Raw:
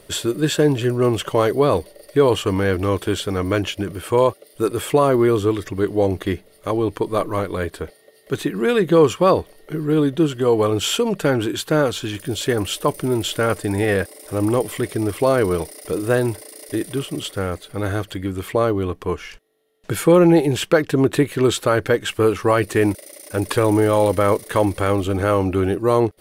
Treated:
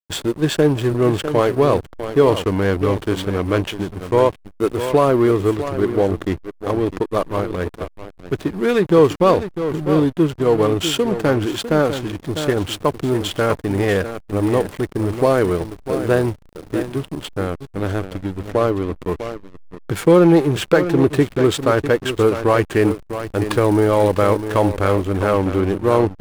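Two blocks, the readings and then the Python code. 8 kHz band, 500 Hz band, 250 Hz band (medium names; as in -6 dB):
-3.5 dB, +1.5 dB, +1.5 dB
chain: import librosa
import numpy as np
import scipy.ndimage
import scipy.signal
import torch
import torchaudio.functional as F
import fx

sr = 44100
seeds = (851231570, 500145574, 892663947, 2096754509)

y = x + 10.0 ** (-9.5 / 20.0) * np.pad(x, (int(650 * sr / 1000.0), 0))[:len(x)]
y = fx.backlash(y, sr, play_db=-21.5)
y = y * 10.0 ** (1.5 / 20.0)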